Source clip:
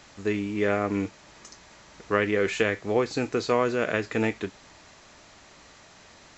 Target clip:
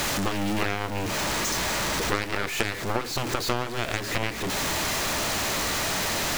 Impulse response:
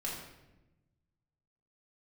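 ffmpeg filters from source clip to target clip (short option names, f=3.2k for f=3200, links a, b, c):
-af "aeval=exprs='val(0)+0.5*0.0562*sgn(val(0))':c=same,aeval=exprs='0.473*(cos(1*acos(clip(val(0)/0.473,-1,1)))-cos(1*PI/2))+0.119*(cos(7*acos(clip(val(0)/0.473,-1,1)))-cos(7*PI/2))+0.0168*(cos(8*acos(clip(val(0)/0.473,-1,1)))-cos(8*PI/2))':c=same,acompressor=threshold=-30dB:ratio=4,volume=6.5dB"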